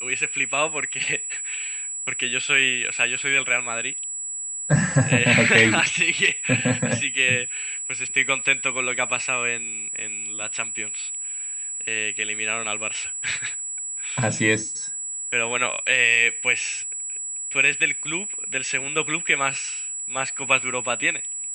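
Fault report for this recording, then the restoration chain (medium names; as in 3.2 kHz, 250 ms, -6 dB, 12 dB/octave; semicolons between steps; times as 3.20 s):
whine 7.8 kHz -28 dBFS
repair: band-stop 7.8 kHz, Q 30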